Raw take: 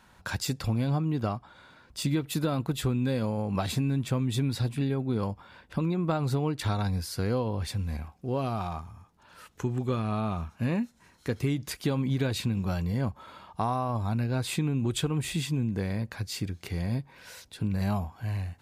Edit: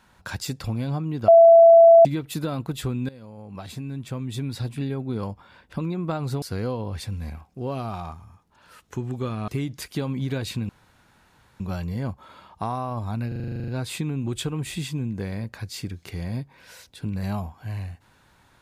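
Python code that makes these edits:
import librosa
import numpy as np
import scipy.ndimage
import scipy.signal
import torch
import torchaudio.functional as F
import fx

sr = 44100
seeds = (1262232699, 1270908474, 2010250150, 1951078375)

y = fx.edit(x, sr, fx.bleep(start_s=1.28, length_s=0.77, hz=668.0, db=-7.5),
    fx.fade_in_from(start_s=3.09, length_s=1.73, floor_db=-18.5),
    fx.cut(start_s=6.42, length_s=0.67),
    fx.cut(start_s=10.15, length_s=1.22),
    fx.insert_room_tone(at_s=12.58, length_s=0.91),
    fx.stutter(start_s=14.26, slice_s=0.04, count=11), tone=tone)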